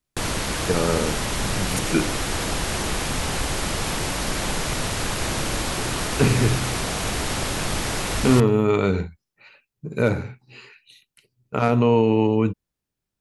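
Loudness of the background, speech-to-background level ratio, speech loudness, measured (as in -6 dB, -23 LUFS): -25.5 LUFS, 3.5 dB, -22.0 LUFS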